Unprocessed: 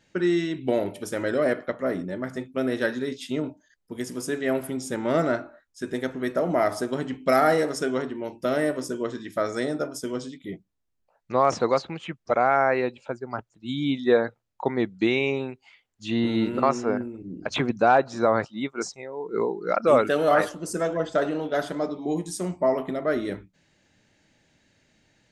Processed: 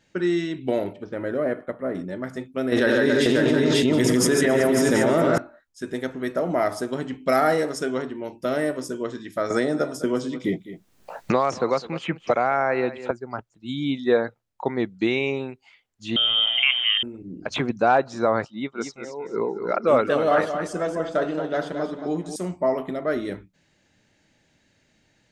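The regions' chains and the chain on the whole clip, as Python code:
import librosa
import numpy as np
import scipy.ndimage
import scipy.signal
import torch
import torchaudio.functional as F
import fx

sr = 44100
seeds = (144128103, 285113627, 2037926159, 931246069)

y = fx.chain(x, sr, fx.resample_bad(factor=4, down='filtered', up='hold'),
    fx.spacing_loss(db_at_10k=27), at=(0.93, 1.95))
y = fx.chain(y, sr, fx.high_shelf(hz=6800.0, db=-6.0),
    fx.echo_multitap(ms=(89, 144, 267, 331, 538, 717), db=(-9.5, -3.0, -10.5, -14.0, -3.0, -11.5)),
    fx.env_flatten(amount_pct=100), at=(2.72, 5.38))
y = fx.chain(y, sr, fx.echo_single(ms=204, db=-19.0),
    fx.band_squash(depth_pct=100), at=(9.5, 13.11))
y = fx.chain(y, sr, fx.freq_invert(carrier_hz=3400),
    fx.env_flatten(amount_pct=50), at=(16.16, 17.03))
y = fx.chain(y, sr, fx.air_absorb(metres=61.0),
    fx.echo_feedback(ms=223, feedback_pct=27, wet_db=-8.5), at=(18.5, 22.36))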